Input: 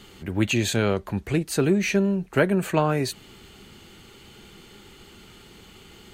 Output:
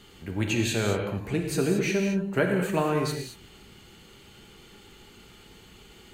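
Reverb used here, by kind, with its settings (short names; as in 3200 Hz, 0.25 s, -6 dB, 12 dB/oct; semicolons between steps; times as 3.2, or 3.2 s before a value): non-linear reverb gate 0.25 s flat, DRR 2 dB; gain -5 dB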